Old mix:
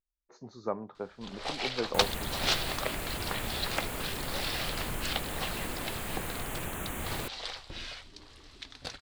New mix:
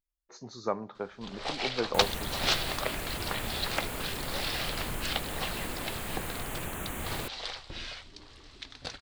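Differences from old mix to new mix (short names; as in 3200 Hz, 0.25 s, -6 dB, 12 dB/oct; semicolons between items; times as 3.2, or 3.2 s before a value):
speech: add high shelf 2000 Hz +11.5 dB; first sound: add LPF 8500 Hz 12 dB/oct; reverb: on, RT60 1.1 s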